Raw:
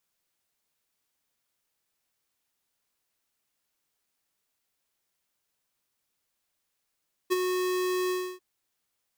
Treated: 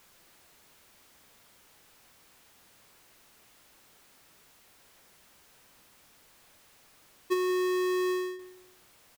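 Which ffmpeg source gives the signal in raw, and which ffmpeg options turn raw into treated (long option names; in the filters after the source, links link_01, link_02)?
-f lavfi -i "aevalsrc='0.075*(2*lt(mod(366*t,1),0.5)-1)':duration=1.093:sample_rate=44100,afade=type=in:duration=0.024,afade=type=out:start_time=0.024:duration=0.024:silence=0.531,afade=type=out:start_time=0.8:duration=0.293"
-filter_complex "[0:a]aeval=exprs='val(0)+0.5*0.00335*sgn(val(0))':channel_layout=same,highshelf=frequency=3300:gain=-7,asplit=2[link_01][link_02];[link_02]adelay=177,lowpass=frequency=2000:poles=1,volume=-13.5dB,asplit=2[link_03][link_04];[link_04]adelay=177,lowpass=frequency=2000:poles=1,volume=0.29,asplit=2[link_05][link_06];[link_06]adelay=177,lowpass=frequency=2000:poles=1,volume=0.29[link_07];[link_01][link_03][link_05][link_07]amix=inputs=4:normalize=0"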